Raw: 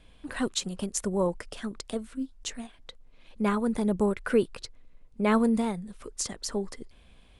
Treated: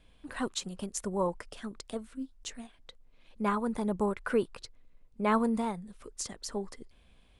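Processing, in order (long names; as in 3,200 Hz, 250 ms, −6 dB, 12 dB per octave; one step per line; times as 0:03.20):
dynamic equaliser 1,000 Hz, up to +7 dB, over −44 dBFS, Q 1.3
level −5.5 dB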